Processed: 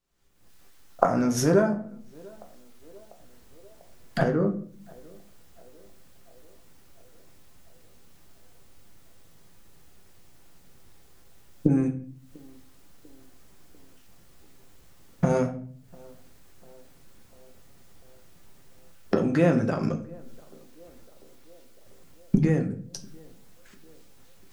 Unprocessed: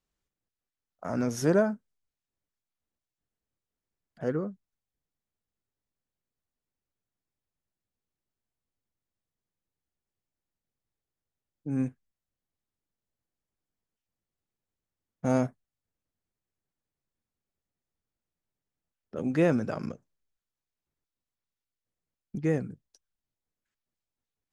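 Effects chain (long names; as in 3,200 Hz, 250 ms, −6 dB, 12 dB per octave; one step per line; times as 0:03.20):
camcorder AGC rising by 57 dB per second
feedback echo with a band-pass in the loop 695 ms, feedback 67%, band-pass 530 Hz, level −24 dB
on a send at −4 dB: convolution reverb RT60 0.50 s, pre-delay 6 ms
on the sum: level +1 dB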